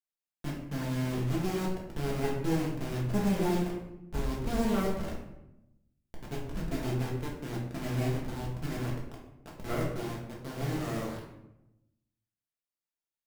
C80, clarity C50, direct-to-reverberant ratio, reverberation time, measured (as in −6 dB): 6.5 dB, 3.5 dB, −4.5 dB, 0.90 s